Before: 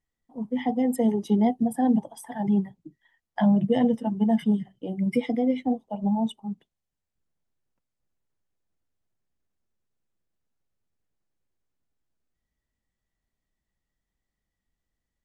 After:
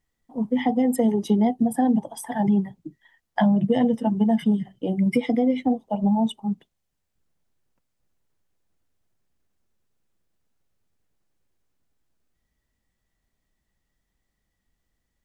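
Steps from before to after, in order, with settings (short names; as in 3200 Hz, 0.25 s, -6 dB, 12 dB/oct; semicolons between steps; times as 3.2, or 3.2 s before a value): compressor 3:1, threshold -25 dBFS, peak gain reduction 7 dB; gain +7 dB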